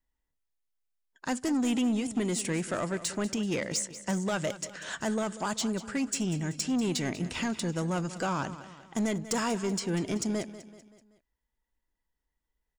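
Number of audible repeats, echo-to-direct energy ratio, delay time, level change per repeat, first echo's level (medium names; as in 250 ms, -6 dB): 4, -13.5 dB, 191 ms, -6.5 dB, -14.5 dB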